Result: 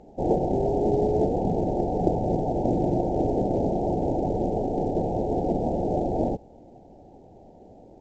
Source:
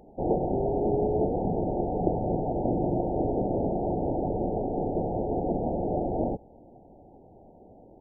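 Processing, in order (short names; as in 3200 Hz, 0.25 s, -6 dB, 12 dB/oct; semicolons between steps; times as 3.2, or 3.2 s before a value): companded quantiser 8-bit; air absorption 75 m; gain +3 dB; µ-law 128 kbps 16000 Hz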